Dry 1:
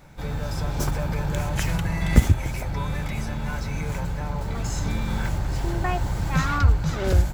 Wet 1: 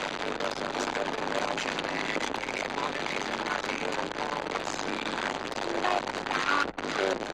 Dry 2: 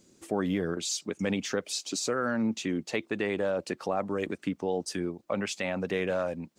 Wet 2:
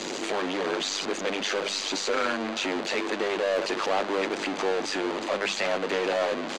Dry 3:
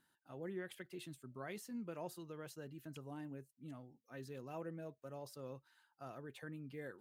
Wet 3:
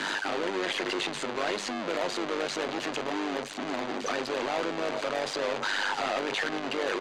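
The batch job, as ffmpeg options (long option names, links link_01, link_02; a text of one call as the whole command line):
ffmpeg -i in.wav -filter_complex "[0:a]aeval=exprs='val(0)+0.5*0.0841*sgn(val(0))':channel_layout=same,lowpass=11000,aeval=exprs='(tanh(12.6*val(0)+0.55)-tanh(0.55))/12.6':channel_layout=same,tremolo=f=99:d=0.788,bandreject=frequency=50:width_type=h:width=6,bandreject=frequency=100:width_type=h:width=6,bandreject=frequency=150:width_type=h:width=6,bandreject=frequency=200:width_type=h:width=6,asplit=2[link_01][link_02];[link_02]adelay=387,lowpass=frequency=3100:poles=1,volume=-20dB,asplit=2[link_03][link_04];[link_04]adelay=387,lowpass=frequency=3100:poles=1,volume=0.33,asplit=2[link_05][link_06];[link_06]adelay=387,lowpass=frequency=3100:poles=1,volume=0.33[link_07];[link_01][link_03][link_05][link_07]amix=inputs=4:normalize=0,acrossover=split=8100[link_08][link_09];[link_09]acompressor=threshold=-55dB:ratio=4:attack=1:release=60[link_10];[link_08][link_10]amix=inputs=2:normalize=0,acrossover=split=250 6500:gain=0.0794 1 0.141[link_11][link_12][link_13];[link_11][link_12][link_13]amix=inputs=3:normalize=0,bandreject=frequency=5400:width=9.5,anlmdn=0.0398,acrossover=split=200[link_14][link_15];[link_14]acompressor=threshold=-56dB:ratio=6[link_16];[link_16][link_15]amix=inputs=2:normalize=0,volume=5.5dB" -ar 48000 -c:a aac -b:a 64k out.aac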